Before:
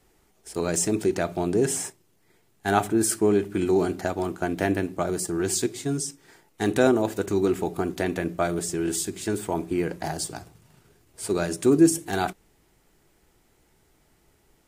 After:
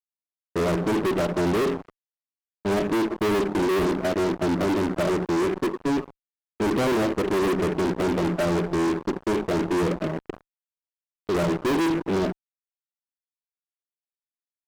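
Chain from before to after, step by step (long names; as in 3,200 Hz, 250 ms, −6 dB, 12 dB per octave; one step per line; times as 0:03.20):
brick-wall band-pass 160–650 Hz
0:10.07–0:11.35: output level in coarse steps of 10 dB
fuzz pedal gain 38 dB, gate −43 dBFS
level −7.5 dB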